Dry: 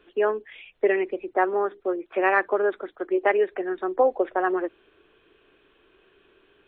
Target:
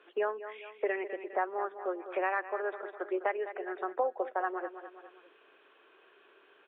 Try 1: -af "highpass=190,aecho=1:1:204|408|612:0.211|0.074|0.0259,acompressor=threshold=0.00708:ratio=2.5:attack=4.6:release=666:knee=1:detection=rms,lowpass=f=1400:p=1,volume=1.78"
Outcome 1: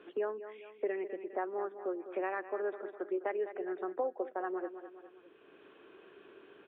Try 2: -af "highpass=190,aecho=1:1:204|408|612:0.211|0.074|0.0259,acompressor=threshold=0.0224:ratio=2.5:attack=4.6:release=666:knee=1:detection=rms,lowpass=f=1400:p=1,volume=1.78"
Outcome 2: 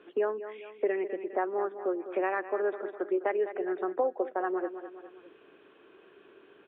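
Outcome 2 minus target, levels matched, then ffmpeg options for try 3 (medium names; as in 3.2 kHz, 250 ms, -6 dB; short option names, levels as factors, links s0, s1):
250 Hz band +4.0 dB
-af "highpass=640,aecho=1:1:204|408|612:0.211|0.074|0.0259,acompressor=threshold=0.0224:ratio=2.5:attack=4.6:release=666:knee=1:detection=rms,lowpass=f=1400:p=1,volume=1.78"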